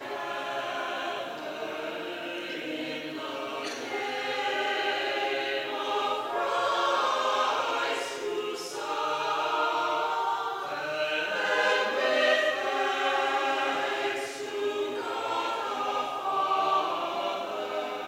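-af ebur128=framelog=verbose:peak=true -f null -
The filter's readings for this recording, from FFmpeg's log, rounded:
Integrated loudness:
  I:         -28.9 LUFS
  Threshold: -38.9 LUFS
Loudness range:
  LRA:         7.2 LU
  Threshold: -48.6 LUFS
  LRA low:   -33.5 LUFS
  LRA high:  -26.2 LUFS
True peak:
  Peak:      -12.6 dBFS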